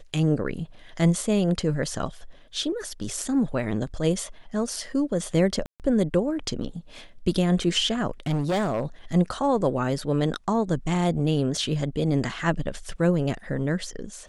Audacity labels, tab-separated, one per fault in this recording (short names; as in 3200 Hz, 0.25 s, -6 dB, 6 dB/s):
5.660000	5.800000	gap 0.138 s
8.260000	8.860000	clipped -21 dBFS